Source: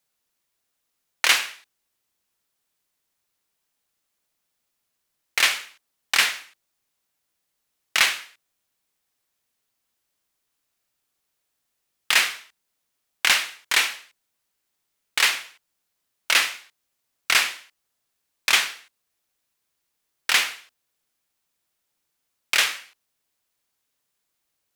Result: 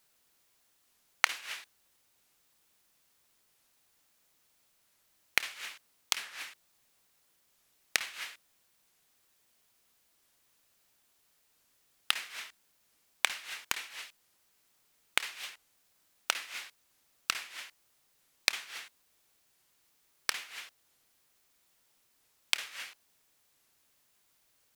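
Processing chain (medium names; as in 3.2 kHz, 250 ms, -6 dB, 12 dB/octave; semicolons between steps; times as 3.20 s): inverted gate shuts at -14 dBFS, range -26 dB; added noise white -79 dBFS; warped record 45 rpm, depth 250 cents; trim +4 dB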